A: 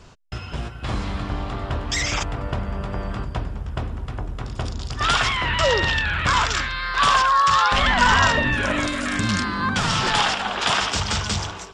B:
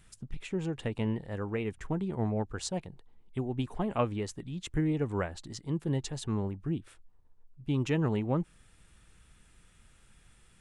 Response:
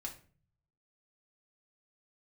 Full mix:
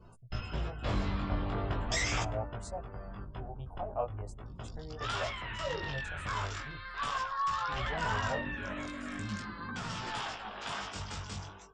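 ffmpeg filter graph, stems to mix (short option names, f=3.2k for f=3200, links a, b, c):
-filter_complex "[0:a]volume=-4.5dB,afade=t=out:st=2.11:d=0.38:silence=0.334965,asplit=2[a][b];[b]volume=-16.5dB[c];[1:a]firequalizer=gain_entry='entry(120,0);entry(210,-25);entry(330,-13);entry(630,9);entry(1100,-2);entry(2000,-11);entry(9500,0)':delay=0.05:min_phase=1,volume=-4dB[d];[2:a]atrim=start_sample=2205[e];[c][e]afir=irnorm=-1:irlink=0[f];[a][d][f]amix=inputs=3:normalize=0,afftdn=nr=23:nf=-54,adynamicequalizer=threshold=0.00447:dfrequency=4100:dqfactor=0.72:tfrequency=4100:tqfactor=0.72:attack=5:release=100:ratio=0.375:range=2:mode=cutabove:tftype=bell,flanger=delay=17:depth=4.2:speed=0.4"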